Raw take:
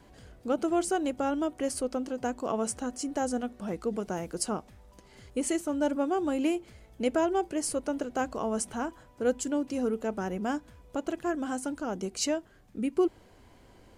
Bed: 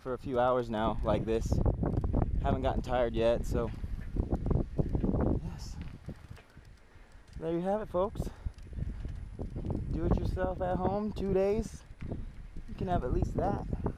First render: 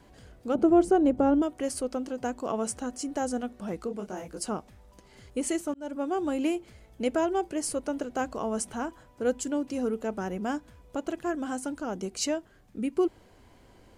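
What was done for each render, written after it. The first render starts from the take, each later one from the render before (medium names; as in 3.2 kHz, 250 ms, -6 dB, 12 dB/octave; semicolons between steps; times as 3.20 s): 0.55–1.42 s: tilt shelf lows +9.5 dB, about 1.2 kHz; 3.86–4.42 s: detune thickener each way 57 cents -> 42 cents; 5.74–6.27 s: fade in equal-power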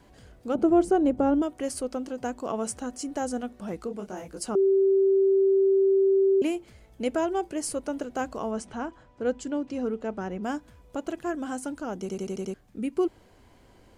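4.55–6.42 s: bleep 388 Hz -17.5 dBFS; 8.51–10.44 s: distance through air 90 m; 12.00 s: stutter in place 0.09 s, 6 plays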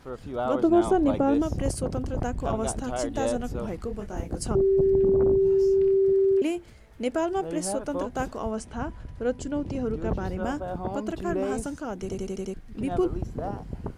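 add bed -1 dB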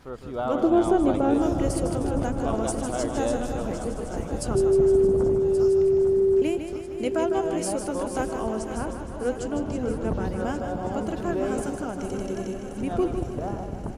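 backward echo that repeats 564 ms, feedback 67%, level -10 dB; feedback delay 155 ms, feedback 56%, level -8 dB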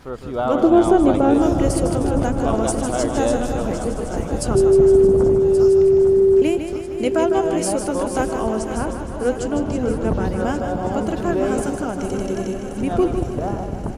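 trim +6.5 dB; peak limiter -3 dBFS, peak gain reduction 1 dB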